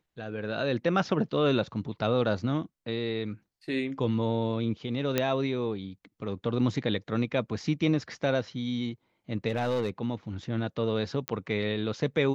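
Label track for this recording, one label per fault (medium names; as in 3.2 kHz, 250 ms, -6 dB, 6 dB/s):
5.180000	5.180000	pop -10 dBFS
9.480000	9.900000	clipped -23.5 dBFS
11.280000	11.280000	pop -13 dBFS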